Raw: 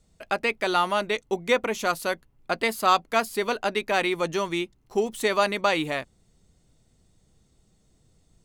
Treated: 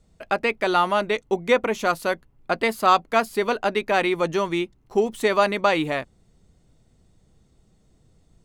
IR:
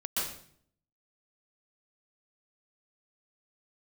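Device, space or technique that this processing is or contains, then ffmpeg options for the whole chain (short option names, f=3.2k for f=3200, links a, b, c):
behind a face mask: -af "highshelf=f=3k:g=-7.5,volume=4dB"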